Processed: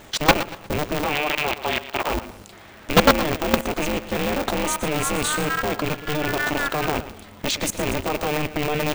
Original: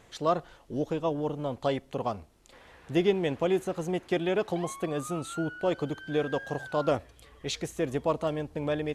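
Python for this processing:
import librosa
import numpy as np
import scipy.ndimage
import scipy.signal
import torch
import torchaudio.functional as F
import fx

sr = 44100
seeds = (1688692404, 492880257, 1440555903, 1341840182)

y = fx.rattle_buzz(x, sr, strikes_db=-37.0, level_db=-28.0)
y = fx.cheby1_bandpass(y, sr, low_hz=720.0, high_hz=3400.0, order=2, at=(1.04, 2.1))
y = fx.level_steps(y, sr, step_db=22)
y = fx.fold_sine(y, sr, drive_db=11, ceiling_db=-13.0)
y = fx.echo_feedback(y, sr, ms=118, feedback_pct=36, wet_db=-13.5)
y = y * np.sign(np.sin(2.0 * np.pi * 150.0 * np.arange(len(y)) / sr))
y = y * 10.0 ** (6.0 / 20.0)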